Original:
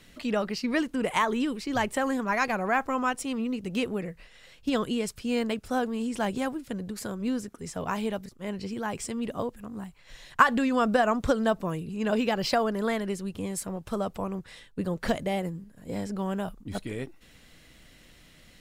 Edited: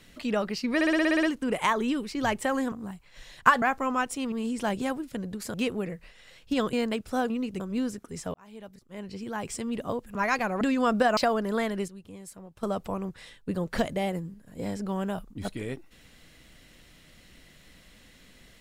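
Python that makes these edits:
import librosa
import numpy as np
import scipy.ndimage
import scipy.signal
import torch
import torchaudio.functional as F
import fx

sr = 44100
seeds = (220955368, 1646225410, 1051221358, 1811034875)

y = fx.edit(x, sr, fx.stutter(start_s=0.75, slice_s=0.06, count=9),
    fx.swap(start_s=2.24, length_s=0.46, other_s=9.65, other_length_s=0.9),
    fx.swap(start_s=3.4, length_s=0.3, other_s=5.88, other_length_s=1.22),
    fx.cut(start_s=4.89, length_s=0.42),
    fx.fade_in_span(start_s=7.84, length_s=1.25),
    fx.cut(start_s=11.11, length_s=1.36),
    fx.clip_gain(start_s=13.18, length_s=0.75, db=-11.5), tone=tone)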